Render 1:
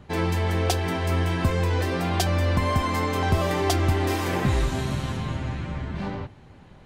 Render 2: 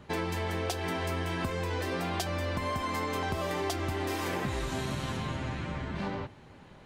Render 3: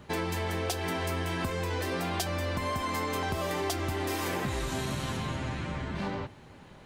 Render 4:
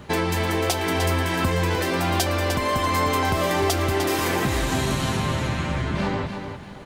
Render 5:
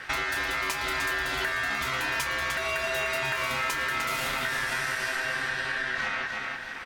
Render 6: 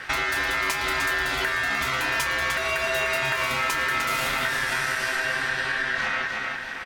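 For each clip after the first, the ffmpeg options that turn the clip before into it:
-af "lowshelf=f=160:g=-8.5,bandreject=f=750:w=23,acompressor=threshold=-29dB:ratio=6"
-filter_complex "[0:a]highshelf=f=7.1k:g=6,asplit=2[a][b];[b]asoftclip=type=tanh:threshold=-28dB,volume=-7dB[c];[a][c]amix=inputs=2:normalize=0,volume=-2dB"
-af "aecho=1:1:302|641:0.422|0.112,volume=8.5dB"
-filter_complex "[0:a]acompressor=threshold=-32dB:ratio=2.5,aeval=exprs='val(0)*sin(2*PI*1700*n/s)':c=same,asplit=2[a][b];[b]adelay=29,volume=-11dB[c];[a][c]amix=inputs=2:normalize=0,volume=4dB"
-filter_complex "[0:a]asplit=2[a][b];[b]adelay=100,highpass=300,lowpass=3.4k,asoftclip=type=hard:threshold=-25dB,volume=-10dB[c];[a][c]amix=inputs=2:normalize=0,volume=3.5dB"

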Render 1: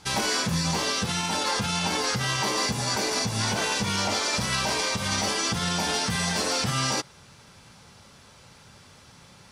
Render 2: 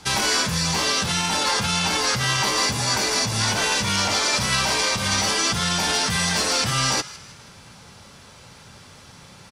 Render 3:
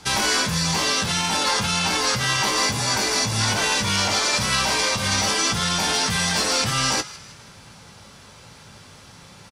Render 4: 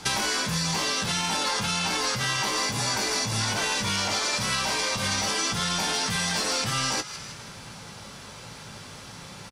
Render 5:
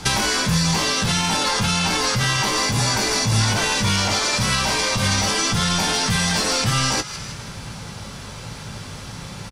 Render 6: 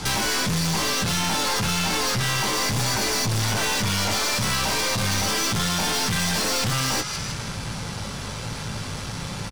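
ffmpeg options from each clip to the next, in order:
-filter_complex "[0:a]acrossover=split=100|950[a][b][c];[b]volume=33.5dB,asoftclip=hard,volume=-33.5dB[d];[c]asplit=5[e][f][g][h][i];[f]adelay=158,afreqshift=69,volume=-17dB[j];[g]adelay=316,afreqshift=138,volume=-23.9dB[k];[h]adelay=474,afreqshift=207,volume=-30.9dB[l];[i]adelay=632,afreqshift=276,volume=-37.8dB[m];[e][j][k][l][m]amix=inputs=5:normalize=0[n];[a][d][n]amix=inputs=3:normalize=0,volume=5.5dB"
-filter_complex "[0:a]asplit=2[a][b];[b]adelay=19,volume=-12dB[c];[a][c]amix=inputs=2:normalize=0"
-af "equalizer=f=76:w=3.8:g=-9,acompressor=threshold=-28dB:ratio=5,volume=3.5dB"
-af "lowshelf=f=140:g=11,volume=5.5dB"
-af "aeval=exprs='(tanh(20*val(0)+0.35)-tanh(0.35))/20':c=same,volume=4.5dB"

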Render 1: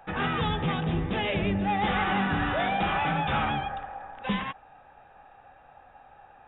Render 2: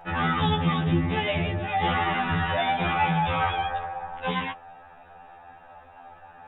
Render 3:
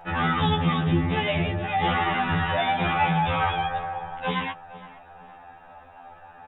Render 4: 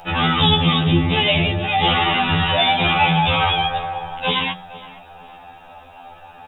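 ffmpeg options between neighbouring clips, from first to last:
-filter_complex "[0:a]asplit=2[a][b];[b]alimiter=level_in=3.5dB:limit=-24dB:level=0:latency=1,volume=-3.5dB,volume=0.5dB[c];[a][c]amix=inputs=2:normalize=0,afftfilt=real='re*2*eq(mod(b,4),0)':imag='im*2*eq(mod(b,4),0)':win_size=2048:overlap=0.75,volume=1.5dB"
-filter_complex "[0:a]asplit=2[a][b];[b]adelay=463,lowpass=f=2.1k:p=1,volume=-17dB,asplit=2[c][d];[d]adelay=463,lowpass=f=2.1k:p=1,volume=0.35,asplit=2[e][f];[f]adelay=463,lowpass=f=2.1k:p=1,volume=0.35[g];[a][c][e][g]amix=inputs=4:normalize=0,volume=1dB"
-af "highshelf=f=2.9k:g=-10,bandreject=f=181:t=h:w=4,bandreject=f=362:t=h:w=4,bandreject=f=543:t=h:w=4,bandreject=f=724:t=h:w=4,bandreject=f=905:t=h:w=4,bandreject=f=1.086k:t=h:w=4,bandreject=f=1.267k:t=h:w=4,bandreject=f=1.448k:t=h:w=4,bandreject=f=1.629k:t=h:w=4,bandreject=f=1.81k:t=h:w=4,bandreject=f=1.991k:t=h:w=4,bandreject=f=2.172k:t=h:w=4,bandreject=f=2.353k:t=h:w=4,bandreject=f=2.534k:t=h:w=4,bandreject=f=2.715k:t=h:w=4,bandreject=f=2.896k:t=h:w=4,bandreject=f=3.077k:t=h:w=4,bandreject=f=3.258k:t=h:w=4,bandreject=f=3.439k:t=h:w=4,bandreject=f=3.62k:t=h:w=4,bandreject=f=3.801k:t=h:w=4,bandreject=f=3.982k:t=h:w=4,bandreject=f=4.163k:t=h:w=4,bandreject=f=4.344k:t=h:w=4,bandreject=f=4.525k:t=h:w=4,bandreject=f=4.706k:t=h:w=4,bandreject=f=4.887k:t=h:w=4,bandreject=f=5.068k:t=h:w=4,bandreject=f=5.249k:t=h:w=4,bandreject=f=5.43k:t=h:w=4,aexciter=amount=8.3:drive=2.2:freq=2.6k,volume=6dB"

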